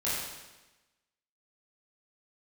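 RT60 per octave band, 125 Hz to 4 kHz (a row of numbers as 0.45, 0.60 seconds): 1.1, 1.1, 1.1, 1.1, 1.1, 1.1 seconds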